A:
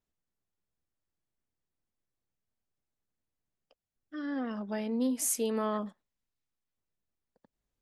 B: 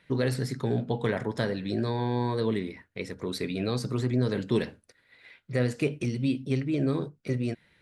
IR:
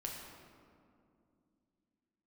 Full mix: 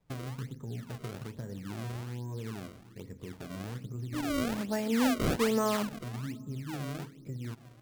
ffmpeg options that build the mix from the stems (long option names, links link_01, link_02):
-filter_complex "[0:a]volume=2dB,asplit=3[link_01][link_02][link_03];[link_02]volume=-13.5dB[link_04];[1:a]aemphasis=mode=reproduction:type=riaa,acompressor=threshold=-22dB:ratio=2,alimiter=limit=-16.5dB:level=0:latency=1:release=128,volume=-16dB,asplit=2[link_05][link_06];[link_06]volume=-10dB[link_07];[link_03]apad=whole_len=344473[link_08];[link_05][link_08]sidechaincompress=threshold=-44dB:ratio=8:attack=16:release=214[link_09];[2:a]atrim=start_sample=2205[link_10];[link_04][link_07]amix=inputs=2:normalize=0[link_11];[link_11][link_10]afir=irnorm=-1:irlink=0[link_12];[link_01][link_09][link_12]amix=inputs=3:normalize=0,acrusher=samples=29:mix=1:aa=0.000001:lfo=1:lforange=46.4:lforate=1.2"